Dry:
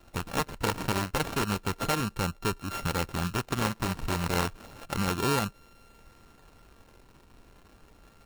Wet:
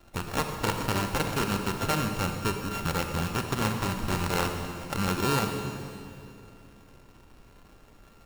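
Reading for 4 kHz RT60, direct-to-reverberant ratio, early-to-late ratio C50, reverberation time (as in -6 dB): 2.3 s, 5.0 dB, 5.5 dB, 2.5 s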